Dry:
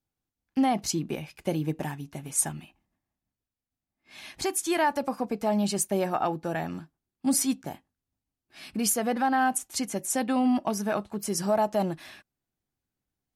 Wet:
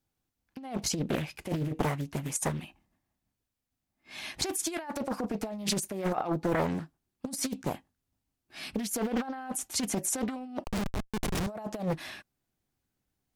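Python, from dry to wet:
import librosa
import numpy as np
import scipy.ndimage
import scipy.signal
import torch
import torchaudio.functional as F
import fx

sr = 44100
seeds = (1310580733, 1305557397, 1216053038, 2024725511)

y = fx.over_compress(x, sr, threshold_db=-30.0, ratio=-0.5)
y = fx.schmitt(y, sr, flips_db=-25.0, at=(10.64, 11.47))
y = fx.doppler_dist(y, sr, depth_ms=0.77)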